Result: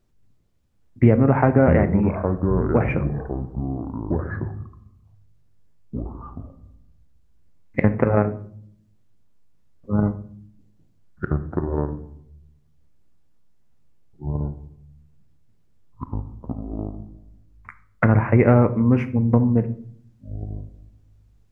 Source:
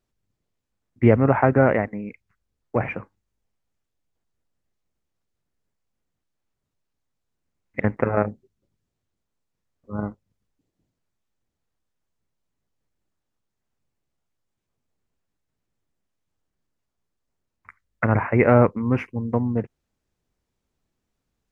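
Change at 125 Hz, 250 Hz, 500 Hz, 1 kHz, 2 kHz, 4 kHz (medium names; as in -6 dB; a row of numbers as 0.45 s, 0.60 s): +5.5 dB, +4.5 dB, +1.0 dB, -0.5 dB, -1.0 dB, no reading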